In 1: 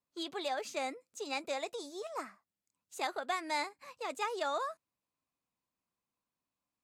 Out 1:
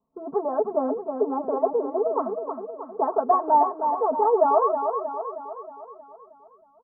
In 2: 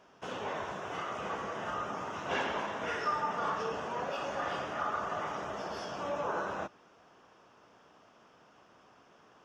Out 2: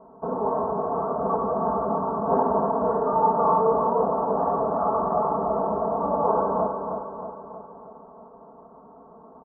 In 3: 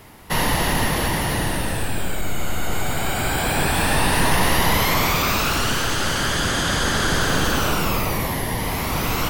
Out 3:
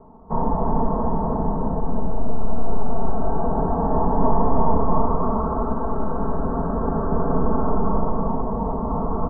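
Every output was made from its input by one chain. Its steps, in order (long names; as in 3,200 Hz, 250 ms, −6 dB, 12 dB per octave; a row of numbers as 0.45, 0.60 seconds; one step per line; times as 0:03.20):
Butterworth low-pass 1,100 Hz 48 dB per octave
comb filter 4.5 ms, depth 96%
repeating echo 315 ms, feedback 54%, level −6.5 dB
loudness normalisation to −24 LKFS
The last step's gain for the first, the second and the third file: +13.5, +10.5, −2.5 decibels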